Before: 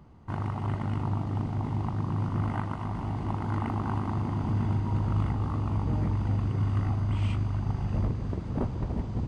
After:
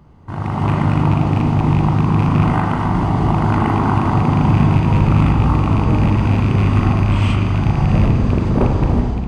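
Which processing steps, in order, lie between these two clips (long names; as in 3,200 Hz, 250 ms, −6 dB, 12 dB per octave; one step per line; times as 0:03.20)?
loose part that buzzes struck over −24 dBFS, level −34 dBFS
in parallel at −2 dB: brickwall limiter −27 dBFS, peak gain reduction 10 dB
on the sum: automatic gain control gain up to 12.5 dB
spring reverb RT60 1.2 s, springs 33/45 ms, chirp 80 ms, DRR 3 dB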